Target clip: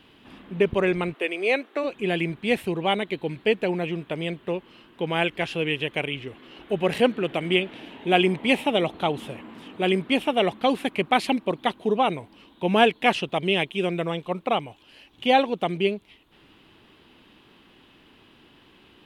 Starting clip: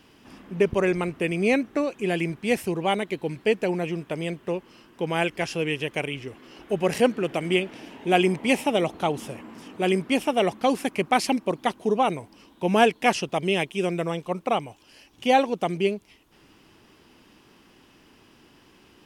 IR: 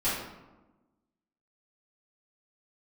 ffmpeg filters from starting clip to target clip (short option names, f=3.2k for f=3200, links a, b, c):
-filter_complex "[0:a]asplit=3[a][b][c];[a]afade=t=out:st=1.13:d=0.02[d];[b]highpass=f=360:w=0.5412,highpass=f=360:w=1.3066,afade=t=in:st=1.13:d=0.02,afade=t=out:st=1.83:d=0.02[e];[c]afade=t=in:st=1.83:d=0.02[f];[d][e][f]amix=inputs=3:normalize=0,highshelf=f=4.5k:t=q:w=3:g=-6"